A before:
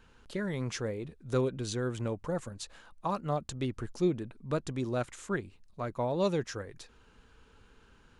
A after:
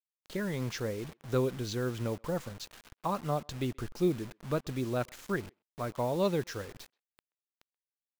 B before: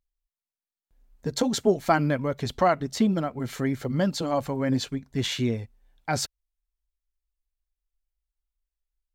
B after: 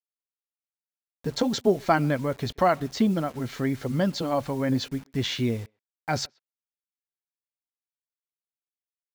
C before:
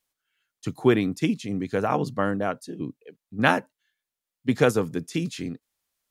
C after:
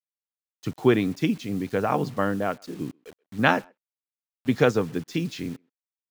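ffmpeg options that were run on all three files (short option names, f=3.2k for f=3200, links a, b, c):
-filter_complex "[0:a]lowpass=f=6.2k:w=0.5412,lowpass=f=6.2k:w=1.3066,acrusher=bits=7:mix=0:aa=0.000001,asplit=2[a][b];[b]adelay=130,highpass=300,lowpass=3.4k,asoftclip=type=hard:threshold=-13.5dB,volume=-29dB[c];[a][c]amix=inputs=2:normalize=0"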